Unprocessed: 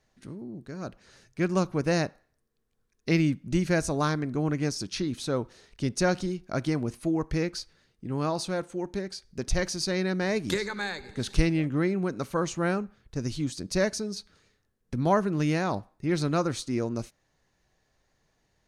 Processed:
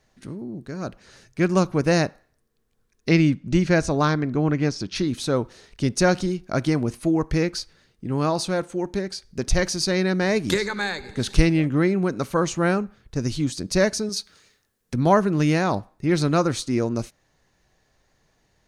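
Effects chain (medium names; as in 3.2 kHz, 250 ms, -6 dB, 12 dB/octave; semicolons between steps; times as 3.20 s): 3.09–4.94 s: low-pass 7.2 kHz -> 4.1 kHz 12 dB/octave; 14.09–14.94 s: tilt EQ +2 dB/octave; trim +6 dB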